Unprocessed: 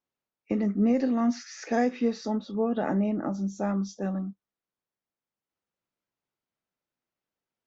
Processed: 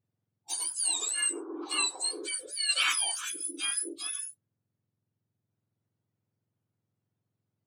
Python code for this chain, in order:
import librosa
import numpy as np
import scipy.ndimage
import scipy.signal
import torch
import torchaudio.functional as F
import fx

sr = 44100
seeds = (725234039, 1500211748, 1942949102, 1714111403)

y = fx.octave_mirror(x, sr, pivot_hz=1400.0)
y = fx.peak_eq(y, sr, hz=fx.line((2.68, 3100.0), (3.24, 670.0)), db=11.5, octaves=2.3, at=(2.68, 3.24), fade=0.02)